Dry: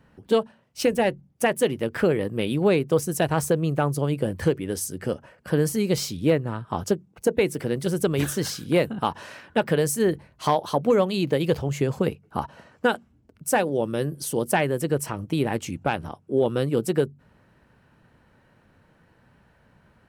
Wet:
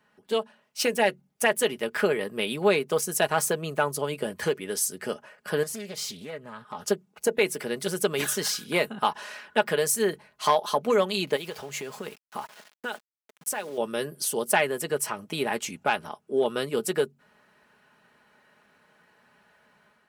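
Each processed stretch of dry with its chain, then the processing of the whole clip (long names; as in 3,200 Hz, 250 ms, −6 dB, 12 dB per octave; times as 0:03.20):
0:05.63–0:06.88: notch comb filter 330 Hz + downward compressor 4 to 1, threshold −31 dBFS + highs frequency-modulated by the lows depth 0.24 ms
0:11.36–0:13.78: low-shelf EQ 190 Hz −4 dB + downward compressor 5 to 1, threshold −28 dBFS + centre clipping without the shift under −46.5 dBFS
whole clip: high-pass filter 880 Hz 6 dB per octave; comb filter 4.8 ms, depth 48%; automatic gain control gain up to 5.5 dB; level −2.5 dB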